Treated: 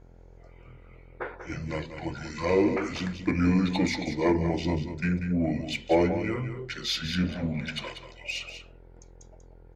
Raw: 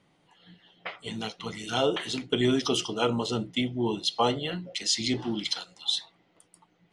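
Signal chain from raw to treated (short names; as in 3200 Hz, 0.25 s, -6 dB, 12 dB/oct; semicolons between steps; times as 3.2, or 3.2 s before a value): buzz 60 Hz, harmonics 22, -54 dBFS -6 dB/oct; in parallel at -3.5 dB: soft clip -22 dBFS, distortion -13 dB; on the sum: fifteen-band EQ 100 Hz +4 dB, 630 Hz +6 dB, 4000 Hz -8 dB; varispeed -29%; echo 0.19 s -9.5 dB; on a send at -18 dB: reverb RT60 0.40 s, pre-delay 3 ms; on the sum: gain -4 dB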